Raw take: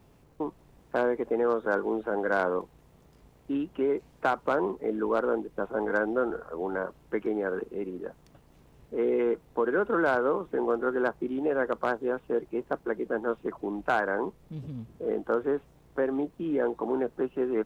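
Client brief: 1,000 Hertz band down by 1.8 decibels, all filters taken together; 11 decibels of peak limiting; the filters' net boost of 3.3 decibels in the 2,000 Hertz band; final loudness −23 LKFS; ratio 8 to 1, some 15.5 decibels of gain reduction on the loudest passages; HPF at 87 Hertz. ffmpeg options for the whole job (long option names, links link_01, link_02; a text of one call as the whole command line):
ffmpeg -i in.wav -af "highpass=87,equalizer=frequency=1000:width_type=o:gain=-5.5,equalizer=frequency=2000:width_type=o:gain=8.5,acompressor=threshold=-38dB:ratio=8,volume=21.5dB,alimiter=limit=-12dB:level=0:latency=1" out.wav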